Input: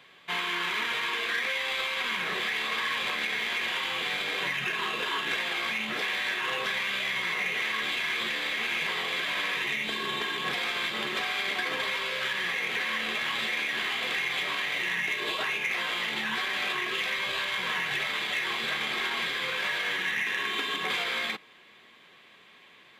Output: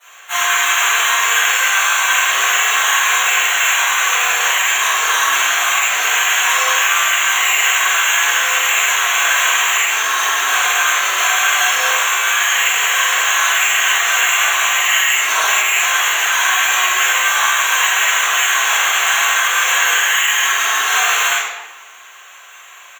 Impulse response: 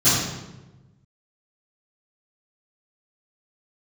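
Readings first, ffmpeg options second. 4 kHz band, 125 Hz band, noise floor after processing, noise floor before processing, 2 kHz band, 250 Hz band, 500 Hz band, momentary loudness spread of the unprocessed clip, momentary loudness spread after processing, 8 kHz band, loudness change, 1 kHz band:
+13.5 dB, under -20 dB, -39 dBFS, -55 dBFS, +15.0 dB, n/a, +8.0 dB, 1 LU, 1 LU, +30.5 dB, +15.5 dB, +18.0 dB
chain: -filter_complex "[0:a]asplit=2[a][b];[b]adelay=45,volume=-4.5dB[c];[a][c]amix=inputs=2:normalize=0,acrusher=samples=9:mix=1:aa=0.000001,highpass=f=680:w=0.5412,highpass=f=680:w=1.3066[d];[1:a]atrim=start_sample=2205[e];[d][e]afir=irnorm=-1:irlink=0,volume=-4dB"

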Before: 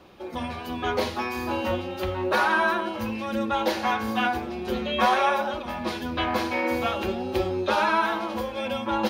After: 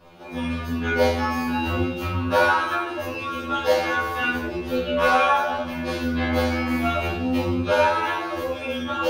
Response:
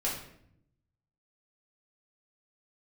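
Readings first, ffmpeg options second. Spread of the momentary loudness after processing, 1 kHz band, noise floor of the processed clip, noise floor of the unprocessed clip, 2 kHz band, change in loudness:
9 LU, +1.5 dB, -32 dBFS, -36 dBFS, +3.0 dB, +3.0 dB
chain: -filter_complex "[1:a]atrim=start_sample=2205[a];[0:a][a]afir=irnorm=-1:irlink=0,afftfilt=real='re*2*eq(mod(b,4),0)':imag='im*2*eq(mod(b,4),0)':win_size=2048:overlap=0.75"

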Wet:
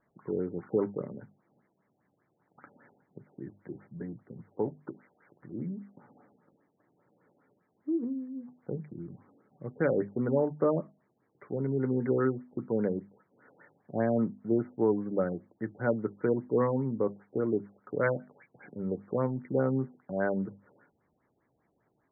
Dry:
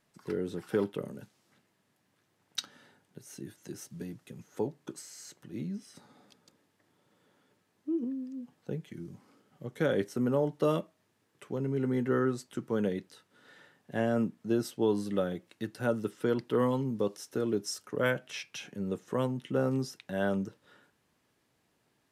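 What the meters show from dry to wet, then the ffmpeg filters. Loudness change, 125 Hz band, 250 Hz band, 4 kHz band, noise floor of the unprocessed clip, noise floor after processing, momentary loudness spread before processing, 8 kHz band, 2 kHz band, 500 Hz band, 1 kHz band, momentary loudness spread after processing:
+1.0 dB, +1.0 dB, +0.5 dB, under -40 dB, -74 dBFS, -75 dBFS, 16 LU, under -30 dB, -1.5 dB, +1.5 dB, 0.0 dB, 16 LU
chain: -af "bandreject=f=50:t=h:w=6,bandreject=f=100:t=h:w=6,bandreject=f=150:t=h:w=6,bandreject=f=200:t=h:w=6,bandreject=f=250:t=h:w=6,afftfilt=real='re*lt(b*sr/1024,800*pow(2400/800,0.5+0.5*sin(2*PI*5*pts/sr)))':imag='im*lt(b*sr/1024,800*pow(2400/800,0.5+0.5*sin(2*PI*5*pts/sr)))':win_size=1024:overlap=0.75,volume=1.5dB"

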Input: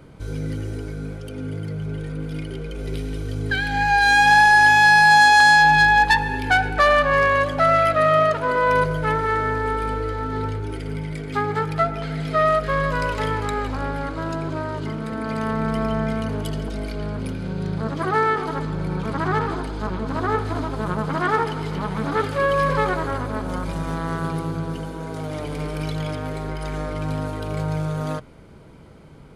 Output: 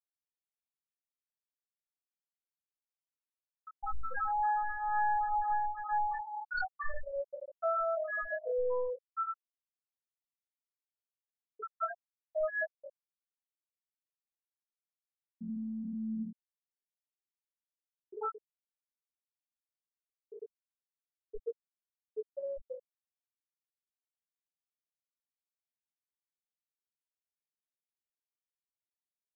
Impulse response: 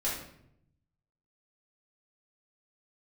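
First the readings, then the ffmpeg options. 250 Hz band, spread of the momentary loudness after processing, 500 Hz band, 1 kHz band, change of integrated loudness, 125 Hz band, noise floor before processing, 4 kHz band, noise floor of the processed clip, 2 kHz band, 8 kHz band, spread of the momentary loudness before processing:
-20.0 dB, 19 LU, -16.5 dB, -17.5 dB, -15.5 dB, -35.0 dB, -33 dBFS, under -40 dB, under -85 dBFS, -25.0 dB, under -40 dB, 17 LU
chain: -filter_complex "[0:a]acrusher=samples=15:mix=1:aa=0.000001,highshelf=f=4k:t=q:w=1.5:g=11,volume=13.5dB,asoftclip=hard,volume=-13.5dB,equalizer=f=84:t=o:w=0.83:g=-13,aecho=1:1:82:0.282,acrossover=split=4300[a][b];[b]acompressor=threshold=-34dB:ratio=4:attack=1:release=60[c];[a][c]amix=inputs=2:normalize=0,bandreject=f=50:t=h:w=6,bandreject=f=100:t=h:w=6,bandreject=f=150:t=h:w=6,bandreject=f=200:t=h:w=6,bandreject=f=250:t=h:w=6,bandreject=f=300:t=h:w=6[d];[1:a]atrim=start_sample=2205,atrim=end_sample=3528[e];[d][e]afir=irnorm=-1:irlink=0,acrusher=bits=5:mix=0:aa=0.000001,afftfilt=real='re*gte(hypot(re,im),1.12)':imag='im*gte(hypot(re,im),1.12)':win_size=1024:overlap=0.75,acompressor=threshold=-21dB:ratio=10,flanger=delay=16.5:depth=2.2:speed=0.38,volume=-7.5dB"

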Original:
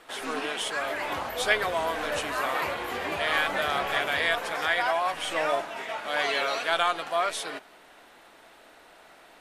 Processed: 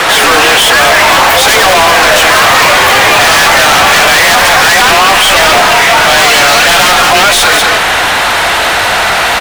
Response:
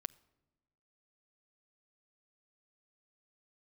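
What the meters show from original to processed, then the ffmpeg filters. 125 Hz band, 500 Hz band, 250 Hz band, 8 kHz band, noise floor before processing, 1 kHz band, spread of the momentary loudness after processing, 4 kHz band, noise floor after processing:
+26.0 dB, +20.0 dB, +21.5 dB, +30.5 dB, -54 dBFS, +23.0 dB, 4 LU, +26.5 dB, -9 dBFS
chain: -filter_complex "[0:a]asubboost=boost=10:cutoff=95,acrossover=split=290|5900[a][b][c];[a]acompressor=threshold=-45dB:ratio=6[d];[d][b][c]amix=inputs=3:normalize=0,afreqshift=27,asplit=2[e][f];[f]aeval=exprs='0.251*sin(PI/2*6.31*val(0)/0.251)':c=same,volume=-3.5dB[g];[e][g]amix=inputs=2:normalize=0,aecho=1:1:188:0.316,asplit=2[h][i];[i]highpass=f=720:p=1,volume=36dB,asoftclip=type=tanh:threshold=-4.5dB[j];[h][j]amix=inputs=2:normalize=0,lowpass=f=6.4k:p=1,volume=-6dB,volume=4.5dB"

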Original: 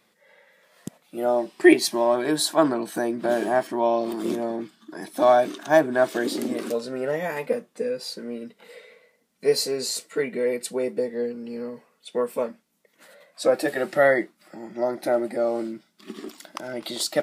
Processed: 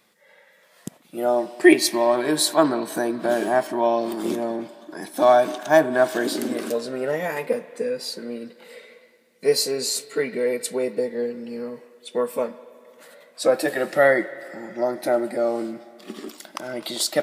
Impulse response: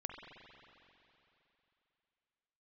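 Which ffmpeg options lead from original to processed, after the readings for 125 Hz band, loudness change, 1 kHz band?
+0.5 dB, +1.5 dB, +2.0 dB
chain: -filter_complex "[0:a]asplit=2[a][b];[b]lowshelf=f=270:g=-11.5[c];[1:a]atrim=start_sample=2205,highshelf=f=4.9k:g=9[d];[c][d]afir=irnorm=-1:irlink=0,volume=-7.5dB[e];[a][e]amix=inputs=2:normalize=0"

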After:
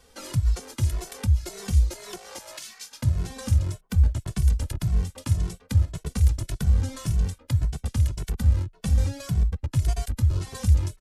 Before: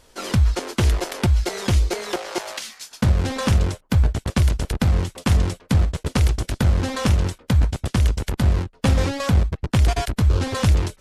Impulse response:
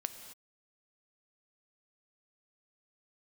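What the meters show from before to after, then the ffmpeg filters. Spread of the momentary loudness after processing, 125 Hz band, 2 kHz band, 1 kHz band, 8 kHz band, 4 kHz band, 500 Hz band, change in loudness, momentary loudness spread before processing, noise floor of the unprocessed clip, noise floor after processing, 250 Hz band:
6 LU, -3.5 dB, -13.5 dB, -14.0 dB, -5.0 dB, -10.5 dB, -13.5 dB, -4.5 dB, 3 LU, -55 dBFS, -57 dBFS, -10.0 dB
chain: -filter_complex "[0:a]acrossover=split=160|5900[a][b][c];[b]acompressor=threshold=-36dB:ratio=6[d];[a][d][c]amix=inputs=3:normalize=0,asplit=2[e][f];[f]adelay=2.2,afreqshift=1.8[g];[e][g]amix=inputs=2:normalize=1"

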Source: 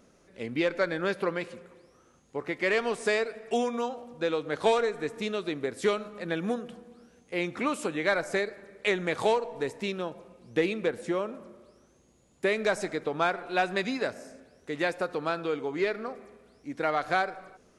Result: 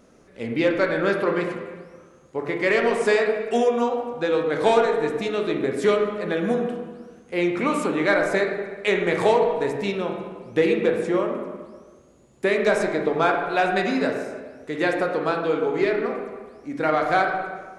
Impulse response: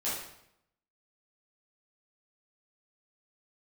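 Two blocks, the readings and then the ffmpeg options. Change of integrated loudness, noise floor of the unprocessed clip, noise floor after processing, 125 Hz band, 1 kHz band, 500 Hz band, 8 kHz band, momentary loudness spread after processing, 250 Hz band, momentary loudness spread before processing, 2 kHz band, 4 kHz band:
+7.0 dB, -62 dBFS, -52 dBFS, +7.5 dB, +7.0 dB, +8.0 dB, +3.0 dB, 13 LU, +8.0 dB, 12 LU, +6.0 dB, +3.5 dB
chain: -filter_complex "[0:a]asplit=2[a][b];[1:a]atrim=start_sample=2205,asetrate=23373,aresample=44100,lowpass=2.4k[c];[b][c]afir=irnorm=-1:irlink=0,volume=-10dB[d];[a][d]amix=inputs=2:normalize=0,volume=3dB"

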